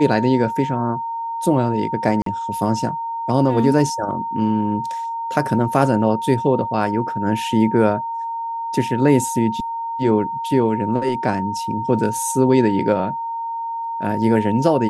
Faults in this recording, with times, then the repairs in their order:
whistle 920 Hz −23 dBFS
0:02.22–0:02.26: drop-out 43 ms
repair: notch filter 920 Hz, Q 30
repair the gap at 0:02.22, 43 ms

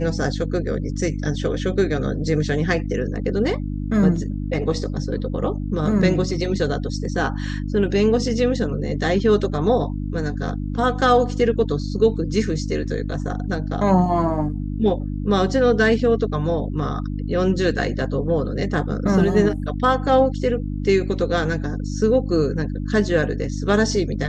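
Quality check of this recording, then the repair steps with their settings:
mains hum 50 Hz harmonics 6 −26 dBFS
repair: hum removal 50 Hz, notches 6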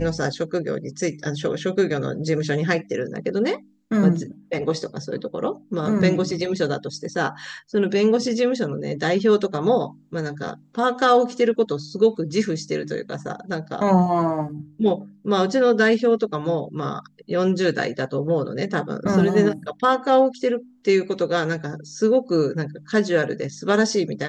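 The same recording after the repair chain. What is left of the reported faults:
none of them is left

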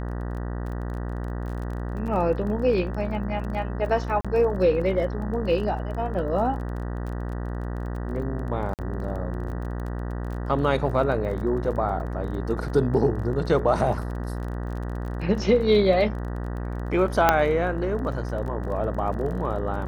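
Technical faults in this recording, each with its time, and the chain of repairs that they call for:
mains buzz 60 Hz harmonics 32 −30 dBFS
surface crackle 24 per second −34 dBFS
0:04.21–0:04.25: drop-out 36 ms
0:08.74–0:08.79: drop-out 48 ms
0:17.29: click −3 dBFS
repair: click removal
hum removal 60 Hz, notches 32
repair the gap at 0:04.21, 36 ms
repair the gap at 0:08.74, 48 ms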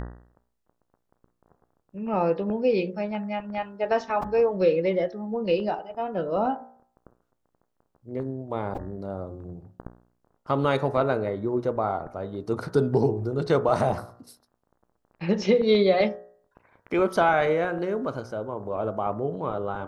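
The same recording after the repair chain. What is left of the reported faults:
none of them is left

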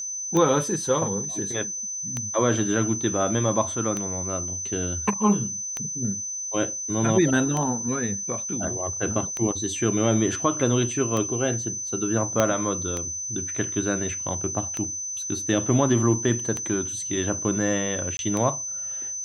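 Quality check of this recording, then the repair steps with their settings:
scratch tick 33 1/3 rpm −13 dBFS
whistle 6,100 Hz −29 dBFS
0:12.40: click −6 dBFS
0:18.17–0:18.19: drop-out 21 ms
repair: click removal
notch filter 6,100 Hz, Q 30
repair the gap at 0:18.17, 21 ms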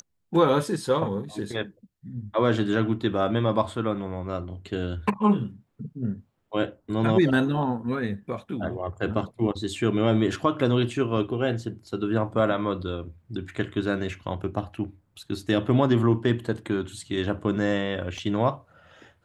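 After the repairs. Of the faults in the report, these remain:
0:12.40: click

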